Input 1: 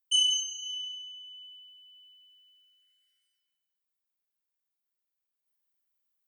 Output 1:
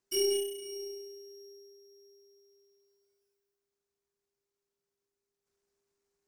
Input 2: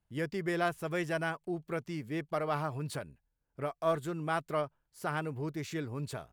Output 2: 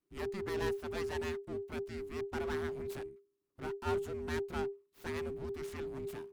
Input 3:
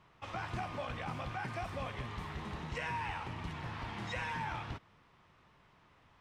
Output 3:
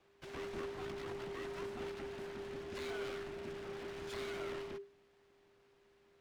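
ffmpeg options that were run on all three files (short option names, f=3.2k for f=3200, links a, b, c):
-af "aeval=exprs='abs(val(0))':c=same,afreqshift=-400,aeval=exprs='0.188*(cos(1*acos(clip(val(0)/0.188,-1,1)))-cos(1*PI/2))+0.00335*(cos(6*acos(clip(val(0)/0.188,-1,1)))-cos(6*PI/2))':c=same,volume=-3.5dB"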